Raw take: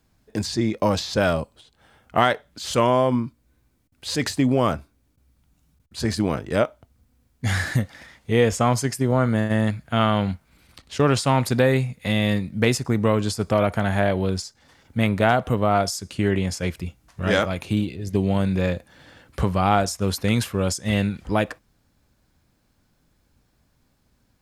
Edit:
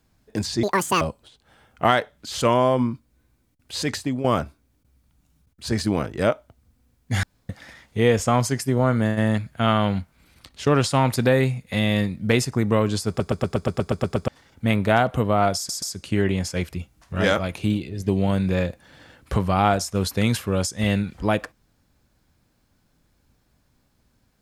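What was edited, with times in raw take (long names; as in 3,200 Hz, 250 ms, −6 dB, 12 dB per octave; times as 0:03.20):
0:00.63–0:01.34: play speed 186%
0:04.08–0:04.57: fade out, to −10 dB
0:07.56–0:07.82: fill with room tone
0:13.41: stutter in place 0.12 s, 10 plays
0:15.89: stutter 0.13 s, 3 plays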